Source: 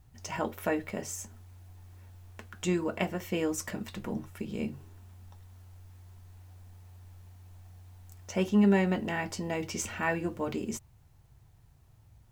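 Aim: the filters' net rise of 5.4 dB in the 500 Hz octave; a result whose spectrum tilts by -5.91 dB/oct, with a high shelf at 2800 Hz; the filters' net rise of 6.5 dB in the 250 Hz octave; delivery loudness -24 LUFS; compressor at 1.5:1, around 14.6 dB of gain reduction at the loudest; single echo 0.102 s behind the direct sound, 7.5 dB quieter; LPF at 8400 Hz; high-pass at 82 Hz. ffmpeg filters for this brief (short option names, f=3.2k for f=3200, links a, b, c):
-af "highpass=82,lowpass=8.4k,equalizer=f=250:t=o:g=8.5,equalizer=f=500:t=o:g=4,highshelf=f=2.8k:g=-5.5,acompressor=threshold=-55dB:ratio=1.5,aecho=1:1:102:0.422,volume=14dB"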